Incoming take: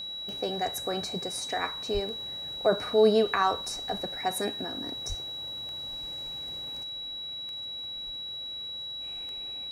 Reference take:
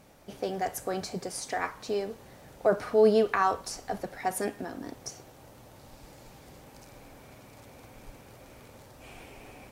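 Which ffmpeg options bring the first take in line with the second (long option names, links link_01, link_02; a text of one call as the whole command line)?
ffmpeg -i in.wav -filter_complex "[0:a]adeclick=threshold=4,bandreject=frequency=3900:width=30,asplit=3[link_01][link_02][link_03];[link_01]afade=type=out:start_time=1.93:duration=0.02[link_04];[link_02]highpass=frequency=140:width=0.5412,highpass=frequency=140:width=1.3066,afade=type=in:start_time=1.93:duration=0.02,afade=type=out:start_time=2.05:duration=0.02[link_05];[link_03]afade=type=in:start_time=2.05:duration=0.02[link_06];[link_04][link_05][link_06]amix=inputs=3:normalize=0,asplit=3[link_07][link_08][link_09];[link_07]afade=type=out:start_time=5.08:duration=0.02[link_10];[link_08]highpass=frequency=140:width=0.5412,highpass=frequency=140:width=1.3066,afade=type=in:start_time=5.08:duration=0.02,afade=type=out:start_time=5.2:duration=0.02[link_11];[link_09]afade=type=in:start_time=5.2:duration=0.02[link_12];[link_10][link_11][link_12]amix=inputs=3:normalize=0,asetnsamples=nb_out_samples=441:pad=0,asendcmd='6.83 volume volume 6.5dB',volume=0dB" out.wav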